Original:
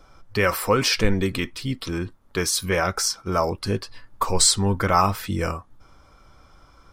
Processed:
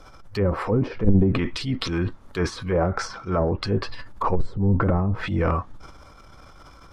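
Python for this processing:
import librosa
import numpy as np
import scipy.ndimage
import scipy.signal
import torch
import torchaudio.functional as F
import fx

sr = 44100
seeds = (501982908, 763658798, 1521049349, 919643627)

y = fx.env_lowpass_down(x, sr, base_hz=310.0, full_db=-16.0)
y = fx.transient(y, sr, attack_db=-8, sustain_db=8)
y = F.gain(torch.from_numpy(y), 4.0).numpy()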